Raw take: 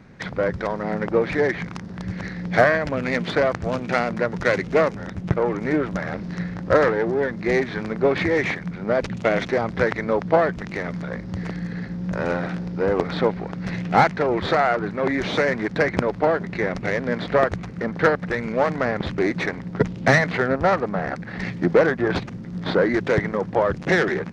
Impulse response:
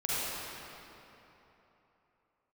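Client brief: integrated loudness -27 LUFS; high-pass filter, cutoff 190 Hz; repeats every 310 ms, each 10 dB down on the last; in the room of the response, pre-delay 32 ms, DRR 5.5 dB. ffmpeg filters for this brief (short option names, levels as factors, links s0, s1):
-filter_complex "[0:a]highpass=190,aecho=1:1:310|620|930|1240:0.316|0.101|0.0324|0.0104,asplit=2[s0][s1];[1:a]atrim=start_sample=2205,adelay=32[s2];[s1][s2]afir=irnorm=-1:irlink=0,volume=0.188[s3];[s0][s3]amix=inputs=2:normalize=0,volume=0.531"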